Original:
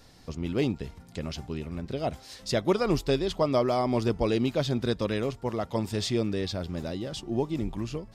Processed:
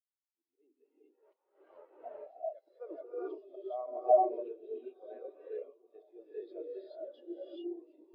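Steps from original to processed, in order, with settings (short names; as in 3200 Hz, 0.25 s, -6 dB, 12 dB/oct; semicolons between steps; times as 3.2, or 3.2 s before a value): 0.85–1.97 half-waves squared off; recorder AGC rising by 8.3 dB/s; Bessel high-pass 570 Hz, order 8; auto swell 0.204 s; high shelf 2400 Hz +12 dB; soft clip -14 dBFS, distortion -17 dB; tape spacing loss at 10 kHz 36 dB; diffused feedback echo 1.105 s, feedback 42%, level -11 dB; non-linear reverb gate 0.46 s rising, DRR -5 dB; spectral expander 2.5:1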